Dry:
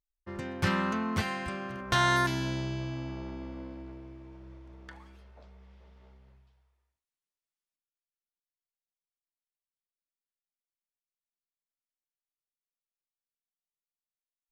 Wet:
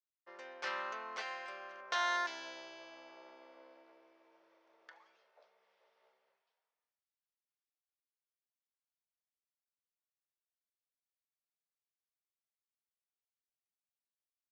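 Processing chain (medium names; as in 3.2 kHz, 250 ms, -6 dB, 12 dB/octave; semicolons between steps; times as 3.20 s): Chebyshev band-pass 500–6000 Hz, order 3; trim -7.5 dB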